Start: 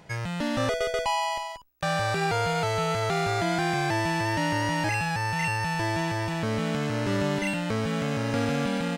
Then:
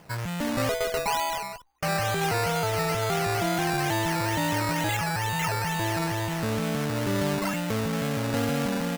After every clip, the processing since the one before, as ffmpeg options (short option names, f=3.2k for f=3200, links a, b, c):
-af "acrusher=samples=11:mix=1:aa=0.000001:lfo=1:lforange=6.6:lforate=2.2"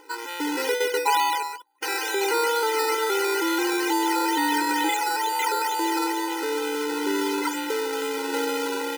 -af "afftfilt=real='re*eq(mod(floor(b*sr/1024/260),2),1)':imag='im*eq(mod(floor(b*sr/1024/260),2),1)':win_size=1024:overlap=0.75,volume=6.5dB"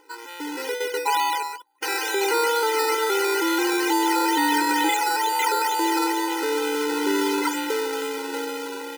-af "dynaudnorm=f=170:g=13:m=8dB,volume=-5dB"